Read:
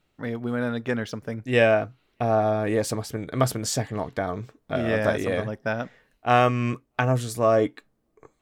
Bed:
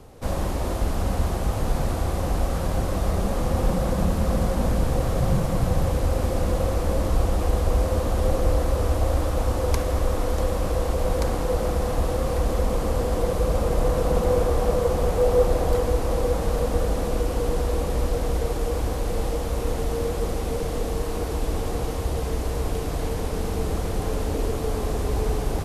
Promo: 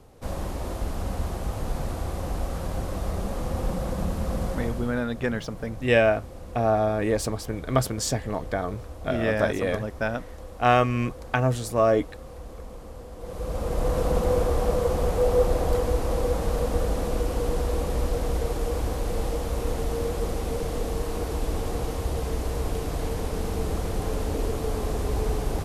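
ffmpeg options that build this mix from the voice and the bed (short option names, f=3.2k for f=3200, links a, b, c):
-filter_complex "[0:a]adelay=4350,volume=-0.5dB[a];[1:a]volume=10dB,afade=t=out:st=4.5:d=0.53:silence=0.251189,afade=t=in:st=13.18:d=0.81:silence=0.16788[b];[a][b]amix=inputs=2:normalize=0"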